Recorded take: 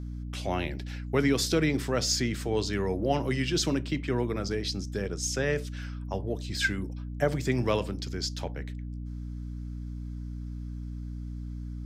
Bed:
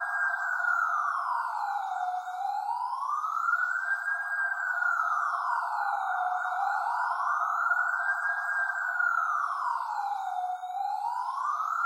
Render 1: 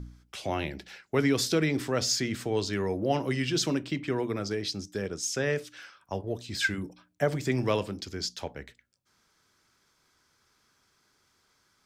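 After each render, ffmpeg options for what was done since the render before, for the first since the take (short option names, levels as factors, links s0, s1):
-af "bandreject=f=60:t=h:w=4,bandreject=f=120:t=h:w=4,bandreject=f=180:t=h:w=4,bandreject=f=240:t=h:w=4,bandreject=f=300:t=h:w=4"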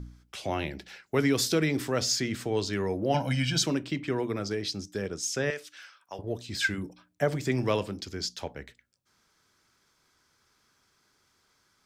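-filter_complex "[0:a]asettb=1/sr,asplit=3[s0][s1][s2];[s0]atrim=end=1.064[s3];[s1]atrim=start=1.06:end=2.02,asetpts=PTS-STARTPTS,afade=t=in:d=0.004:c=qsin,afade=t=out:st=0.956:d=0.004:c=qsin,highshelf=f=10000:g=6.5[s4];[s2]atrim=start=2.016[s5];[s3][s4]acrossfade=d=0.004:c1=hsin:c2=qsin[s6];[s6][s5]acrossfade=d=0.004:c1=qsin:c2=hsin,asettb=1/sr,asplit=3[s7][s8][s9];[s7]atrim=end=3.144[s10];[s8]atrim=start=3.14:end=3.63,asetpts=PTS-STARTPTS,afade=t=in:d=0.004:c=qsin,afade=t=out:st=0.486:d=0.004:c=qsin,aecho=1:1:1.3:1,atrim=end_sample=21609[s11];[s9]atrim=start=3.626[s12];[s10][s11]acrossfade=d=0.004:c1=hsin:c2=qsin[s13];[s13][s12]acrossfade=d=0.004:c1=qsin:c2=hsin,asettb=1/sr,asplit=3[s14][s15][s16];[s14]atrim=end=5.504[s17];[s15]atrim=start=5.5:end=6.19,asetpts=PTS-STARTPTS,afade=t=in:d=0.004:c=qsin,afade=t=out:st=0.686:d=0.004:c=qsin,highpass=f=1100:p=1[s18];[s16]atrim=start=6.186[s19];[s17][s18]acrossfade=d=0.004:c1=hsin:c2=qsin[s20];[s20][s19]acrossfade=d=0.004:c1=qsin:c2=hsin"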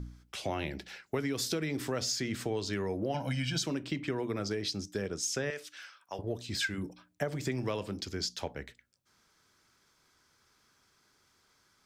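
-af "acompressor=threshold=0.0355:ratio=10"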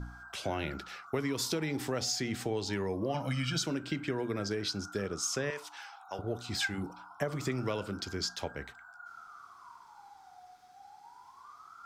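-filter_complex "[1:a]volume=0.075[s0];[0:a][s0]amix=inputs=2:normalize=0"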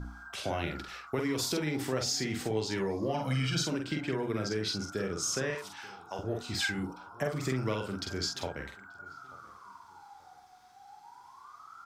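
-filter_complex "[0:a]asplit=2[s0][s1];[s1]adelay=46,volume=0.631[s2];[s0][s2]amix=inputs=2:normalize=0,asplit=2[s3][s4];[s4]adelay=884,lowpass=f=1700:p=1,volume=0.0794,asplit=2[s5][s6];[s6]adelay=884,lowpass=f=1700:p=1,volume=0.35[s7];[s3][s5][s7]amix=inputs=3:normalize=0"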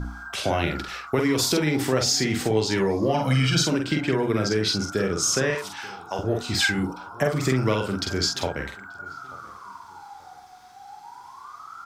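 -af "volume=2.99"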